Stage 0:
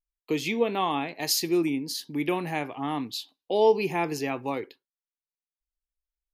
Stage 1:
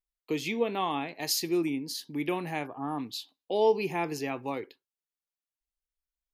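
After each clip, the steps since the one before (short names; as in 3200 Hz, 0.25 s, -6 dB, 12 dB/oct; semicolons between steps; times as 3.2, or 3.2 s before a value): spectral gain 2.67–2.99, 1800–9900 Hz -21 dB; gain -3.5 dB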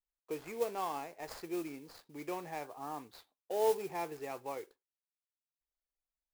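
median filter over 15 samples; ten-band EQ 125 Hz -7 dB, 250 Hz -11 dB, 500 Hz +3 dB, 4000 Hz -6 dB; modulation noise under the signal 17 dB; gain -5.5 dB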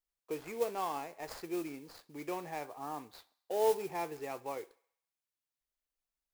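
thinning echo 67 ms, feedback 58%, high-pass 490 Hz, level -22.5 dB; gain +1 dB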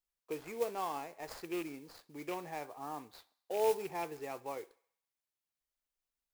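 rattling part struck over -44 dBFS, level -34 dBFS; gain -1.5 dB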